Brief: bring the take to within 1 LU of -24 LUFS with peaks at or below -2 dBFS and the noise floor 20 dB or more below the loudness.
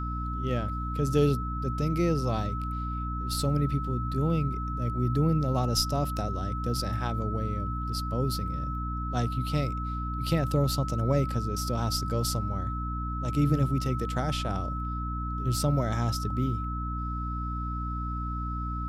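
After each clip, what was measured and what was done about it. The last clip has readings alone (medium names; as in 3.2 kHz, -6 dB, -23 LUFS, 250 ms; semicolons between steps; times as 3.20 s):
hum 60 Hz; highest harmonic 300 Hz; hum level -30 dBFS; steady tone 1.3 kHz; tone level -35 dBFS; loudness -29.5 LUFS; peak level -13.0 dBFS; loudness target -24.0 LUFS
-> hum notches 60/120/180/240/300 Hz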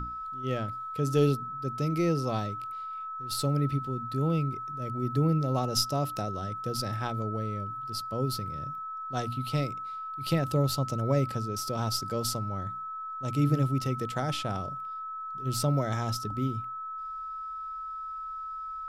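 hum not found; steady tone 1.3 kHz; tone level -35 dBFS
-> band-stop 1.3 kHz, Q 30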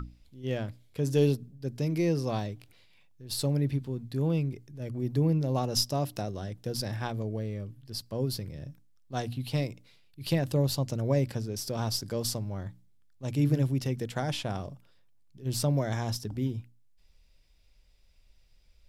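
steady tone not found; loudness -31.0 LUFS; peak level -14.5 dBFS; loudness target -24.0 LUFS
-> trim +7 dB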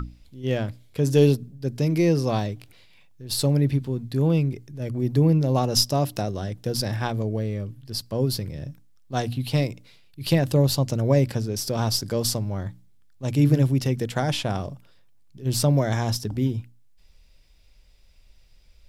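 loudness -24.0 LUFS; peak level -7.5 dBFS; noise floor -54 dBFS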